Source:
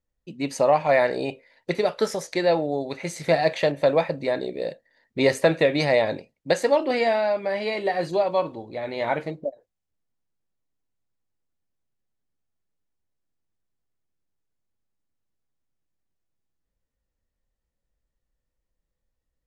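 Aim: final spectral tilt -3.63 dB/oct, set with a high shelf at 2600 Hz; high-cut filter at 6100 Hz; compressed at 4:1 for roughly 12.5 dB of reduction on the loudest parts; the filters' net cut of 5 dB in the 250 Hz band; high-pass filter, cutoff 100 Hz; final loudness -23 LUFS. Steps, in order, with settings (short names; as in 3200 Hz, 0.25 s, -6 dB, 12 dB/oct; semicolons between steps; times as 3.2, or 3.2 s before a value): HPF 100 Hz; LPF 6100 Hz; bell 250 Hz -7 dB; high shelf 2600 Hz +5.5 dB; compressor 4:1, threshold -30 dBFS; gain +10.5 dB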